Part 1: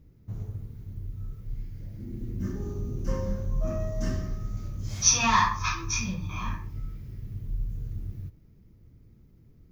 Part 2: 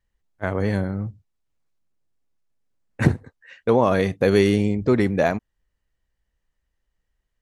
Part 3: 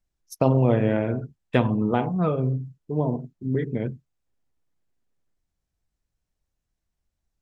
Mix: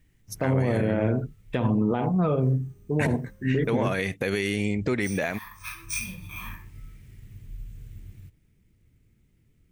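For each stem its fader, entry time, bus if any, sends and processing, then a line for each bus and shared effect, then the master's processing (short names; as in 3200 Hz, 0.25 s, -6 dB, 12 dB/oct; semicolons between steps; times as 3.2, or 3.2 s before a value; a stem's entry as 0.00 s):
-8.0 dB, 0.00 s, muted 4.14–5.02, bus A, no send, sample-and-hold 3×; auto duck -14 dB, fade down 1.65 s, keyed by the second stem
+1.5 dB, 0.00 s, bus A, no send, dry
+2.5 dB, 0.00 s, no bus, no send, dry
bus A: 0.0 dB, EQ curve 1100 Hz 0 dB, 2200 Hz +12 dB, 4800 Hz +4 dB, 8300 Hz +11 dB; compressor 10:1, threshold -20 dBFS, peak gain reduction 12.5 dB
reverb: off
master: limiter -14.5 dBFS, peak gain reduction 12 dB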